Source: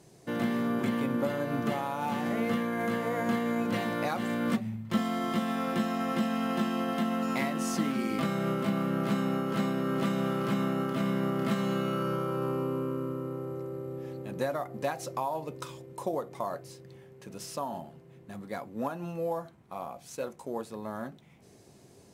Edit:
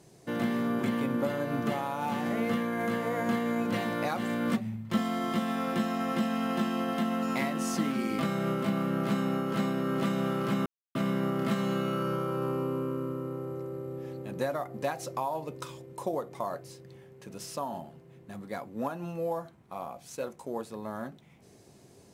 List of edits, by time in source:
10.66–10.95 mute

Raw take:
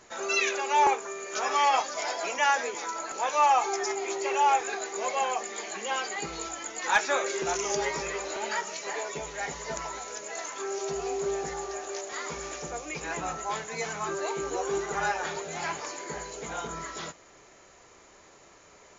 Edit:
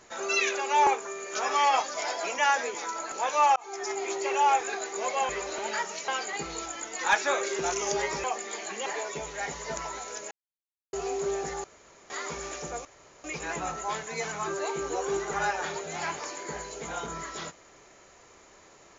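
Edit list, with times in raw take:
3.56–3.99 fade in
5.29–5.91 swap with 8.07–8.86
10.31–10.93 mute
11.64–12.1 room tone
12.85 insert room tone 0.39 s

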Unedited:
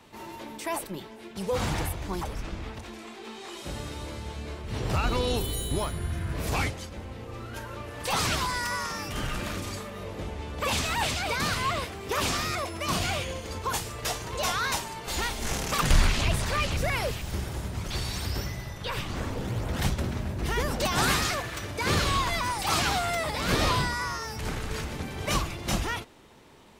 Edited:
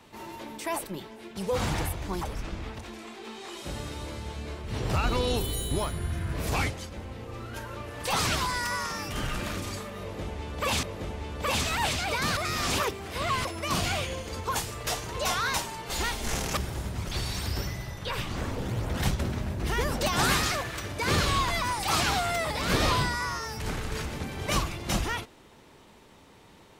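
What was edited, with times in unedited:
10.01–10.83 loop, 2 plays
11.55–12.63 reverse
15.75–17.36 cut

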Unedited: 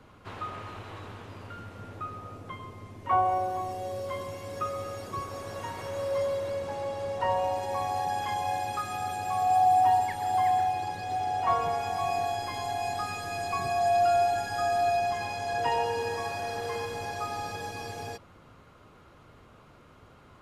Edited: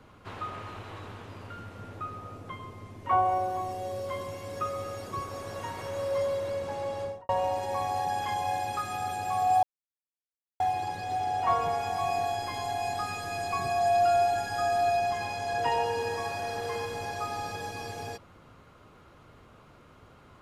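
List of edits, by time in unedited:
7–7.29 studio fade out
9.63–10.6 mute

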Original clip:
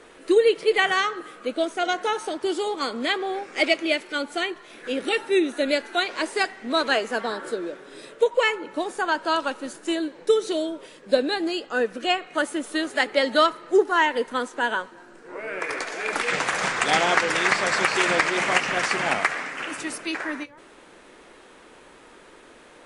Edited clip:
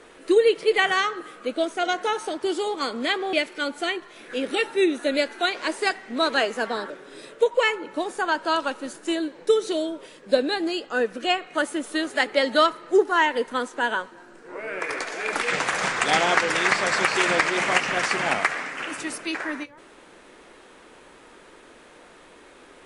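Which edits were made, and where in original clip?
3.33–3.87 cut
7.44–7.7 cut

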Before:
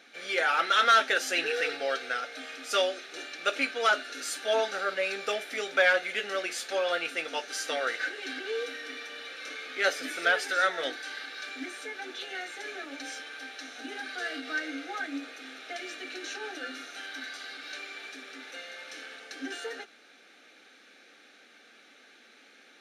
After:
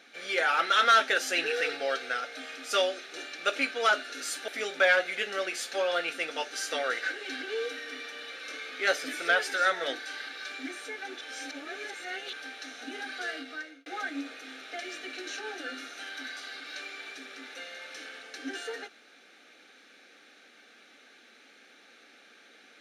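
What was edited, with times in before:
4.48–5.45 cut
12.18–13.3 reverse
14.2–14.83 fade out

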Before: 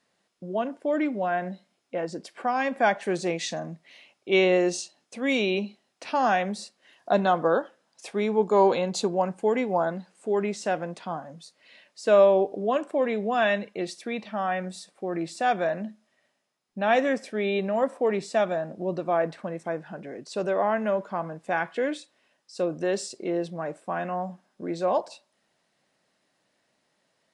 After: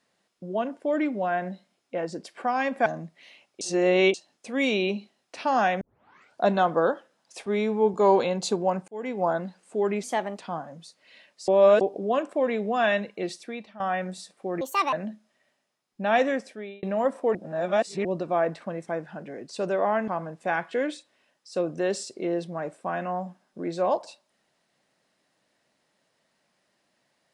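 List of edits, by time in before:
2.86–3.54 cut
4.29–4.82 reverse
6.49 tape start 0.60 s
8.14–8.46 stretch 1.5×
9.4–9.78 fade in
10.55–10.97 speed 117%
12.06–12.39 reverse
13.87–14.38 fade out, to -15 dB
15.19–15.7 speed 160%
16.99–17.6 fade out
18.12–18.82 reverse
20.85–21.11 cut

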